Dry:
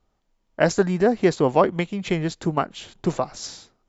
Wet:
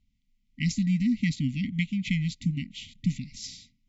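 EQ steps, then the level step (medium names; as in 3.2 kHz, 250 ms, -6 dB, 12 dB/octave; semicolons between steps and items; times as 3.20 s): brick-wall FIR band-stop 280–1900 Hz; low-pass 3.7 kHz 6 dB/octave; 0.0 dB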